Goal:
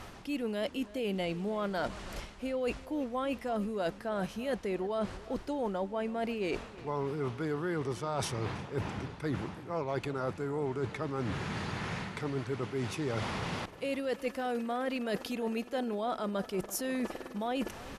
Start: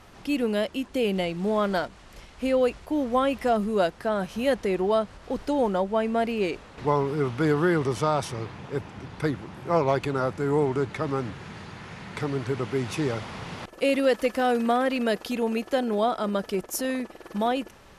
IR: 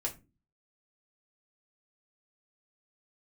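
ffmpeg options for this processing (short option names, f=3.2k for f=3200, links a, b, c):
-filter_complex "[0:a]areverse,acompressor=threshold=-37dB:ratio=8,areverse,asplit=2[a][b];[b]adelay=329,lowpass=f=3.9k:p=1,volume=-18dB,asplit=2[c][d];[d]adelay=329,lowpass=f=3.9k:p=1,volume=0.4,asplit=2[e][f];[f]adelay=329,lowpass=f=3.9k:p=1,volume=0.4[g];[a][c][e][g]amix=inputs=4:normalize=0,volume=5.5dB"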